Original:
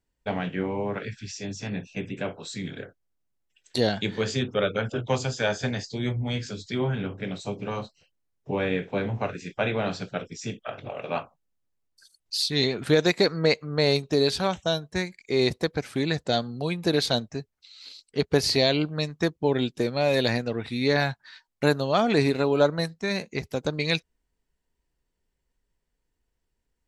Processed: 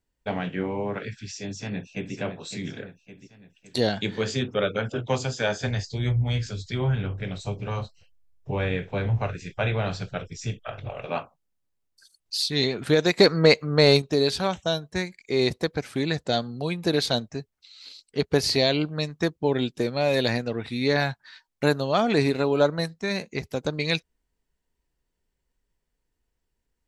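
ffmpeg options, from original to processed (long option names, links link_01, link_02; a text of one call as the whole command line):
ffmpeg -i in.wav -filter_complex "[0:a]asplit=2[link_01][link_02];[link_02]afade=type=in:start_time=1.49:duration=0.01,afade=type=out:start_time=2.15:duration=0.01,aecho=0:1:560|1120|1680|2240|2800|3360:0.375837|0.187919|0.0939594|0.0469797|0.0234898|0.0117449[link_03];[link_01][link_03]amix=inputs=2:normalize=0,asplit=3[link_04][link_05][link_06];[link_04]afade=type=out:start_time=5.66:duration=0.02[link_07];[link_05]asubboost=boost=8.5:cutoff=80,afade=type=in:start_time=5.66:duration=0.02,afade=type=out:start_time=11.06:duration=0.02[link_08];[link_06]afade=type=in:start_time=11.06:duration=0.02[link_09];[link_07][link_08][link_09]amix=inputs=3:normalize=0,asettb=1/sr,asplit=3[link_10][link_11][link_12];[link_10]atrim=end=13.184[link_13];[link_11]atrim=start=13.18:end=14.02,asetpts=PTS-STARTPTS,afade=type=in:duration=0.004:curve=qsin,afade=type=out:start_time=0.836:duration=0.004:curve=qsin,acontrast=39[link_14];[link_12]atrim=start=14.016[link_15];[link_13][link_14]acrossfade=duration=0.004:curve1=hsin:curve2=qsin[link_16];[link_16][link_15]acrossfade=duration=0.004:curve1=qsin:curve2=hsin" out.wav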